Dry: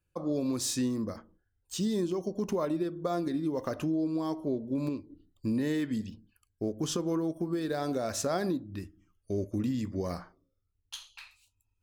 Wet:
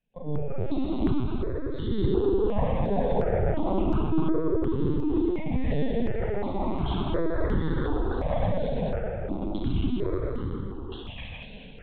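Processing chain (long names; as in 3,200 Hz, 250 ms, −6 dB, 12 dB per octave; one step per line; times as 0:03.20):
camcorder AGC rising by 21 dB per second
flanger 1.1 Hz, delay 2.2 ms, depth 7.2 ms, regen +31%
pitch vibrato 0.48 Hz 14 cents
delay with pitch and tempo change per echo 363 ms, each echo +3 semitones, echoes 2
convolution reverb RT60 4.2 s, pre-delay 28 ms, DRR −4.5 dB
linear-prediction vocoder at 8 kHz pitch kept
step-sequenced phaser 2.8 Hz 340–2,500 Hz
level +4 dB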